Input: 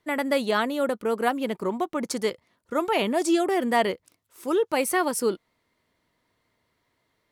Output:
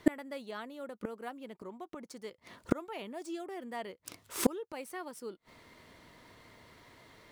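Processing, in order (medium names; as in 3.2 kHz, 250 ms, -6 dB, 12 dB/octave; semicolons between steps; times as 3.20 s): median filter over 3 samples; inverted gate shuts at -26 dBFS, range -34 dB; trim +15.5 dB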